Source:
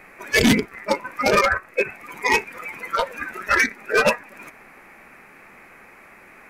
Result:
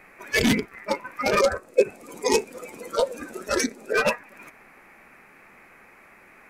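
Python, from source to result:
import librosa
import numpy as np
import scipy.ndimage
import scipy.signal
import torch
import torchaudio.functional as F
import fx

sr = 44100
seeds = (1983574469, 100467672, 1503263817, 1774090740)

y = fx.graphic_eq(x, sr, hz=(250, 500, 1000, 2000, 4000, 8000), db=(7, 10, -3, -12, 4, 11), at=(1.4, 3.93))
y = F.gain(torch.from_numpy(y), -4.5).numpy()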